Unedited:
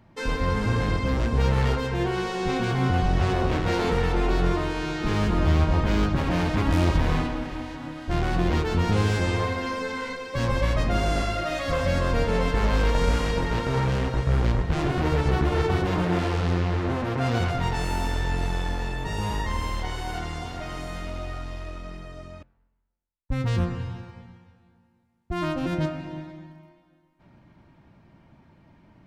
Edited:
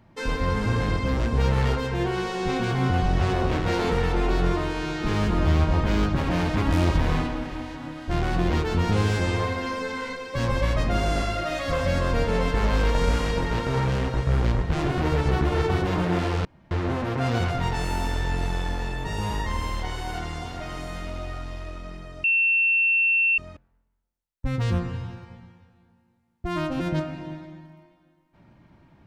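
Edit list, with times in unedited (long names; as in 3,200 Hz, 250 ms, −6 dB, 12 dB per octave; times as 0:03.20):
0:16.45–0:16.71: fill with room tone
0:22.24: insert tone 2,700 Hz −17.5 dBFS 1.14 s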